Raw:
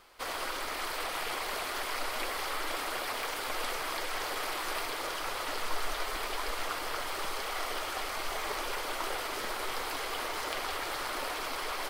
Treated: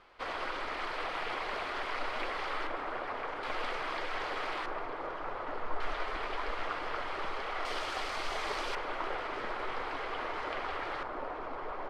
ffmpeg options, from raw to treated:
ffmpeg -i in.wav -af "asetnsamples=nb_out_samples=441:pad=0,asendcmd='2.67 lowpass f 1600;3.43 lowpass f 2900;4.66 lowpass f 1300;5.8 lowpass f 2500;7.65 lowpass f 5300;8.75 lowpass f 2200;11.03 lowpass f 1100',lowpass=2900" out.wav

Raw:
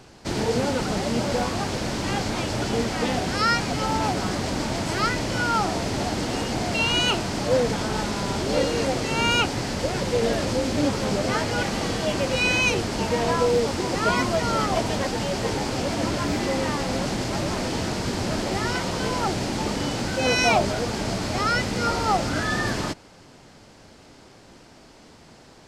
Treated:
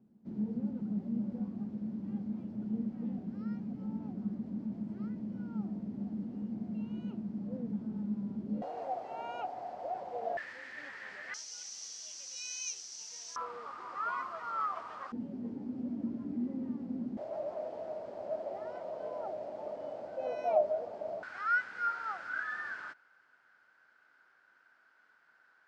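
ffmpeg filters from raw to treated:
ffmpeg -i in.wav -af "asetnsamples=nb_out_samples=441:pad=0,asendcmd='8.62 bandpass f 720;10.37 bandpass f 1800;11.34 bandpass f 5900;13.36 bandpass f 1200;15.12 bandpass f 240;17.17 bandpass f 620;21.23 bandpass f 1500',bandpass=frequency=210:width_type=q:width=11:csg=0" out.wav

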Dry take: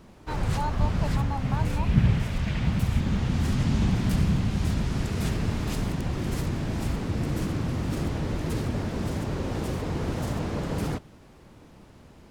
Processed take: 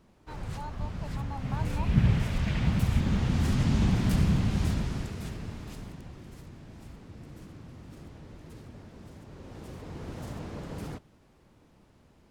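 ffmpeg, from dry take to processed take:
ffmpeg -i in.wav -af "volume=8dB,afade=type=in:start_time=1.06:duration=1.19:silence=0.334965,afade=type=out:start_time=4.6:duration=0.58:silence=0.354813,afade=type=out:start_time=5.18:duration=1.14:silence=0.375837,afade=type=in:start_time=9.26:duration=1.02:silence=0.354813" out.wav

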